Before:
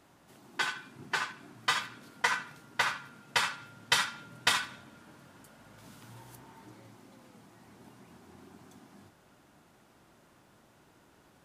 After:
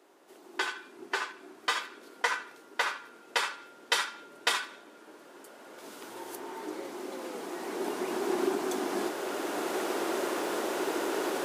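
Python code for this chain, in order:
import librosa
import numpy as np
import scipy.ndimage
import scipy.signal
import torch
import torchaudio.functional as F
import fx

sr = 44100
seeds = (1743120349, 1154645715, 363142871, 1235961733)

y = fx.recorder_agc(x, sr, target_db=-18.5, rise_db_per_s=6.4, max_gain_db=30)
y = fx.ladder_highpass(y, sr, hz=330.0, resonance_pct=55)
y = F.gain(torch.from_numpy(y), 8.5).numpy()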